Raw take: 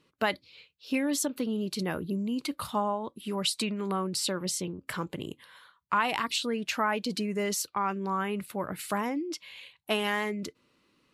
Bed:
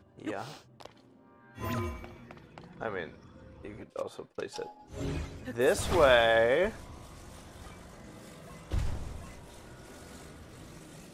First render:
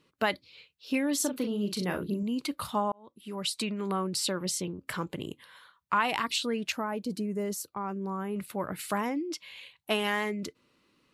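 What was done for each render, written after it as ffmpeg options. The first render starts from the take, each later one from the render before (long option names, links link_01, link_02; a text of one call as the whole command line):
ffmpeg -i in.wav -filter_complex "[0:a]asettb=1/sr,asplit=3[link_01][link_02][link_03];[link_01]atrim=end=1.164[link_04];[link_02]atrim=start=1.16:end=2.23,asetpts=PTS-STARTPTS,afade=type=in:duration=0.004:curve=qsin,afade=type=out:start_time=1.066:duration=0.004:curve=qsin,asplit=2[link_05][link_06];[link_06]adelay=39,volume=-7dB[link_07];[link_05][link_07]amix=inputs=2:normalize=0,atrim=end_sample=47187[link_08];[link_03]atrim=start=2.226[link_09];[link_04][link_08]acrossfade=duration=0.004:curve1=hsin:curve2=qsin[link_10];[link_10][link_09]acrossfade=duration=0.004:curve1=qsin:curve2=hsin,asettb=1/sr,asplit=3[link_11][link_12][link_13];[link_11]atrim=end=6.724[link_14];[link_12]atrim=start=6.72:end=8.36,asetpts=PTS-STARTPTS,afade=type=in:duration=0.004:curve=qsin,afade=type=out:start_time=1.636:duration=0.004:curve=qsin,equalizer=frequency=2800:width=0.42:gain=-13.5[link_15];[link_13]atrim=start=8.356[link_16];[link_14][link_15]acrossfade=duration=0.004:curve1=hsin:curve2=qsin[link_17];[link_17][link_16]acrossfade=duration=0.004:curve1=qsin:curve2=hsin,asplit=2[link_18][link_19];[link_18]atrim=end=2.92,asetpts=PTS-STARTPTS,afade=type=out:start_time=2.916:duration=0.004:curve=hsin[link_20];[link_19]atrim=start=2.92,asetpts=PTS-STARTPTS,afade=type=in:duration=1.14:curve=qsin[link_21];[link_20][link_21]concat=n=2:v=0:a=1" out.wav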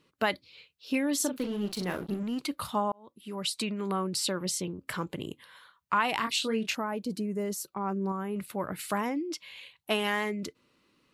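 ffmpeg -i in.wav -filter_complex "[0:a]asettb=1/sr,asplit=3[link_01][link_02][link_03];[link_01]atrim=end=1.374[link_04];[link_02]atrim=start=1.37:end=2.4,asetpts=PTS-STARTPTS,afade=type=in:duration=0.004:curve=qsin,afade=type=out:start_time=1.026:duration=0.004:curve=qsin,aeval=exprs='sgn(val(0))*max(abs(val(0))-0.00631,0)':channel_layout=same[link_05];[link_03]atrim=start=2.396[link_06];[link_04][link_05]acrossfade=duration=0.004:curve1=hsin:curve2=qsin[link_07];[link_07][link_06]acrossfade=duration=0.004:curve1=qsin:curve2=hsin,asettb=1/sr,asplit=3[link_08][link_09][link_10];[link_08]atrim=end=6.194[link_11];[link_09]atrim=start=6.19:end=6.76,asetpts=PTS-STARTPTS,afade=type=in:duration=0.004:curve=qsin,afade=type=out:start_time=0.566:duration=0.004:curve=qsin,asplit=2[link_12][link_13];[link_13]adelay=27,volume=-6dB[link_14];[link_12][link_14]amix=inputs=2:normalize=0,atrim=end_sample=25137[link_15];[link_10]atrim=start=6.756[link_16];[link_11][link_15]acrossfade=duration=0.004:curve1=hsin:curve2=qsin[link_17];[link_17][link_16]acrossfade=duration=0.004:curve1=qsin:curve2=hsin,asettb=1/sr,asplit=3[link_18][link_19][link_20];[link_18]atrim=end=7.614[link_21];[link_19]atrim=start=7.61:end=8.12,asetpts=PTS-STARTPTS,afade=type=in:duration=0.004:curve=qsin,afade=type=out:start_time=0.506:duration=0.004:curve=qsin,aecho=1:1:5.3:0.55,atrim=end_sample=22491[link_22];[link_20]atrim=start=8.116[link_23];[link_21][link_22]acrossfade=duration=0.004:curve1=hsin:curve2=qsin[link_24];[link_24][link_23]acrossfade=duration=0.004:curve1=qsin:curve2=hsin" out.wav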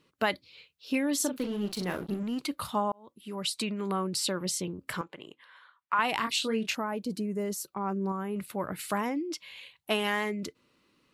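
ffmpeg -i in.wav -filter_complex "[0:a]asettb=1/sr,asplit=3[link_01][link_02][link_03];[link_01]atrim=end=5.014[link_04];[link_02]atrim=start=5.01:end=5.99,asetpts=PTS-STARTPTS,afade=type=in:duration=0.004:curve=qsin,afade=type=out:start_time=0.976:duration=0.004:curve=qsin,bandpass=frequency=1400:width_type=q:width=0.77[link_05];[link_03]atrim=start=5.986[link_06];[link_04][link_05]acrossfade=duration=0.004:curve1=hsin:curve2=qsin[link_07];[link_07][link_06]acrossfade=duration=0.004:curve1=qsin:curve2=hsin" out.wav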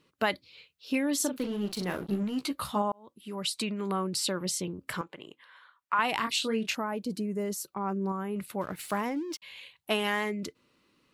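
ffmpeg -i in.wav -filter_complex "[0:a]asettb=1/sr,asplit=3[link_01][link_02][link_03];[link_01]atrim=end=2.094[link_04];[link_02]atrim=start=2.09:end=2.82,asetpts=PTS-STARTPTS,afade=type=in:duration=0.004:curve=qsin,afade=type=out:start_time=0.726:duration=0.004:curve=qsin,asplit=2[link_05][link_06];[link_06]adelay=15,volume=-5.5dB[link_07];[link_05][link_07]amix=inputs=2:normalize=0,atrim=end_sample=32193[link_08];[link_03]atrim=start=2.816[link_09];[link_04][link_08]acrossfade=duration=0.004:curve1=hsin:curve2=qsin[link_10];[link_10][link_09]acrossfade=duration=0.004:curve1=qsin:curve2=hsin,asettb=1/sr,asplit=3[link_11][link_12][link_13];[link_11]atrim=end=8.614[link_14];[link_12]atrim=start=8.61:end=9.42,asetpts=PTS-STARTPTS,afade=type=in:duration=0.004:curve=qsin,afade=type=out:start_time=0.806:duration=0.004:curve=qsin,aeval=exprs='sgn(val(0))*max(abs(val(0))-0.00282,0)':channel_layout=same[link_15];[link_13]atrim=start=9.416[link_16];[link_14][link_15]acrossfade=duration=0.004:curve1=hsin:curve2=qsin[link_17];[link_17][link_16]acrossfade=duration=0.004:curve1=qsin:curve2=hsin" out.wav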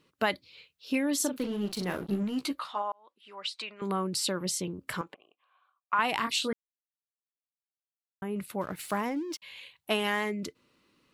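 ffmpeg -i in.wav -filter_complex "[0:a]asettb=1/sr,asplit=3[link_01][link_02][link_03];[link_01]atrim=end=2.594[link_04];[link_02]atrim=start=2.59:end=3.82,asetpts=PTS-STARTPTS,afade=type=in:duration=0.004:curve=qsin,afade=type=out:start_time=1.226:duration=0.004:curve=qsin,highpass=760,lowpass=3900[link_05];[link_03]atrim=start=3.816[link_06];[link_04][link_05]acrossfade=duration=0.004:curve1=hsin:curve2=qsin[link_07];[link_07][link_06]acrossfade=duration=0.004:curve1=qsin:curve2=hsin,asettb=1/sr,asplit=3[link_08][link_09][link_10];[link_08]atrim=end=5.144[link_11];[link_09]atrim=start=5.14:end=5.93,asetpts=PTS-STARTPTS,afade=type=in:duration=0.004:curve=qsin,afade=type=out:start_time=0.786:duration=0.004:curve=qsin,asplit=3[link_12][link_13][link_14];[link_12]bandpass=frequency=730:width_type=q:width=8,volume=0dB[link_15];[link_13]bandpass=frequency=1090:width_type=q:width=8,volume=-6dB[link_16];[link_14]bandpass=frequency=2440:width_type=q:width=8,volume=-9dB[link_17];[link_15][link_16][link_17]amix=inputs=3:normalize=0[link_18];[link_10]atrim=start=5.926[link_19];[link_11][link_18]acrossfade=duration=0.004:curve1=hsin:curve2=qsin[link_20];[link_20][link_19]acrossfade=duration=0.004:curve1=qsin:curve2=hsin,asplit=3[link_21][link_22][link_23];[link_21]atrim=end=6.53,asetpts=PTS-STARTPTS,afade=type=out:start_time=6.526:duration=0.004:curve=hsin[link_24];[link_22]atrim=start=6.53:end=8.22,asetpts=PTS-STARTPTS,volume=0[link_25];[link_23]atrim=start=8.22,asetpts=PTS-STARTPTS,afade=type=in:duration=0.004:curve=hsin[link_26];[link_24][link_25][link_26]concat=n=3:v=0:a=1" out.wav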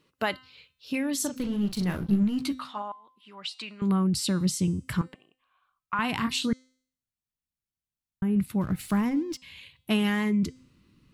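ffmpeg -i in.wav -af "bandreject=frequency=257.7:width_type=h:width=4,bandreject=frequency=515.4:width_type=h:width=4,bandreject=frequency=773.1:width_type=h:width=4,bandreject=frequency=1030.8:width_type=h:width=4,bandreject=frequency=1288.5:width_type=h:width=4,bandreject=frequency=1546.2:width_type=h:width=4,bandreject=frequency=1803.9:width_type=h:width=4,bandreject=frequency=2061.6:width_type=h:width=4,bandreject=frequency=2319.3:width_type=h:width=4,bandreject=frequency=2577:width_type=h:width=4,bandreject=frequency=2834.7:width_type=h:width=4,bandreject=frequency=3092.4:width_type=h:width=4,bandreject=frequency=3350.1:width_type=h:width=4,bandreject=frequency=3607.8:width_type=h:width=4,bandreject=frequency=3865.5:width_type=h:width=4,bandreject=frequency=4123.2:width_type=h:width=4,bandreject=frequency=4380.9:width_type=h:width=4,bandreject=frequency=4638.6:width_type=h:width=4,bandreject=frequency=4896.3:width_type=h:width=4,bandreject=frequency=5154:width_type=h:width=4,bandreject=frequency=5411.7:width_type=h:width=4,bandreject=frequency=5669.4:width_type=h:width=4,bandreject=frequency=5927.1:width_type=h:width=4,bandreject=frequency=6184.8:width_type=h:width=4,bandreject=frequency=6442.5:width_type=h:width=4,bandreject=frequency=6700.2:width_type=h:width=4,bandreject=frequency=6957.9:width_type=h:width=4,bandreject=frequency=7215.6:width_type=h:width=4,bandreject=frequency=7473.3:width_type=h:width=4,bandreject=frequency=7731:width_type=h:width=4,bandreject=frequency=7988.7:width_type=h:width=4,bandreject=frequency=8246.4:width_type=h:width=4,bandreject=frequency=8504.1:width_type=h:width=4,bandreject=frequency=8761.8:width_type=h:width=4,bandreject=frequency=9019.5:width_type=h:width=4,bandreject=frequency=9277.2:width_type=h:width=4,bandreject=frequency=9534.9:width_type=h:width=4,bandreject=frequency=9792.6:width_type=h:width=4,asubboost=boost=10.5:cutoff=170" out.wav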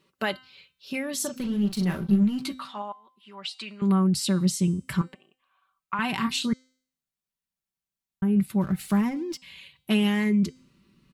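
ffmpeg -i in.wav -af "lowshelf=frequency=61:gain=-8,aecho=1:1:5.2:0.52" out.wav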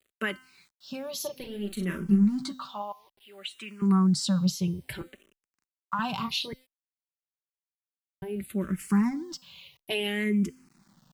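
ffmpeg -i in.wav -filter_complex "[0:a]acrusher=bits=9:mix=0:aa=0.000001,asplit=2[link_01][link_02];[link_02]afreqshift=-0.59[link_03];[link_01][link_03]amix=inputs=2:normalize=1" out.wav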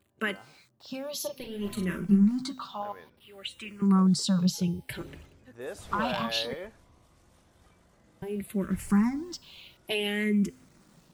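ffmpeg -i in.wav -i bed.wav -filter_complex "[1:a]volume=-13dB[link_01];[0:a][link_01]amix=inputs=2:normalize=0" out.wav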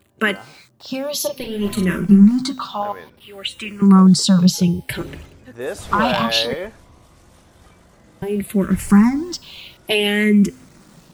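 ffmpeg -i in.wav -af "volume=12dB,alimiter=limit=-2dB:level=0:latency=1" out.wav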